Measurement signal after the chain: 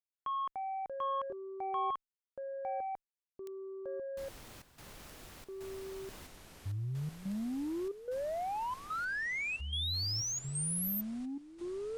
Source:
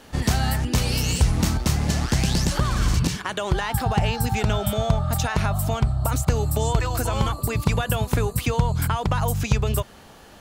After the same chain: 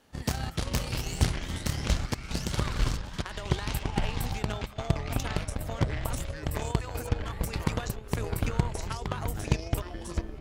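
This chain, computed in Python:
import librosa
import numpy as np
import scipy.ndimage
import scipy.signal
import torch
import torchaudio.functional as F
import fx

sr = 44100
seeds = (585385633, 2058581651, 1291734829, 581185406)

y = fx.step_gate(x, sr, bpm=182, pattern='xxxxxx..xx', floor_db=-12.0, edge_ms=4.5)
y = fx.cheby_harmonics(y, sr, harmonics=(3,), levels_db=(-12,), full_scale_db=-7.5)
y = fx.echo_pitch(y, sr, ms=186, semitones=-6, count=3, db_per_echo=-3.0)
y = y * 10.0 ** (-3.5 / 20.0)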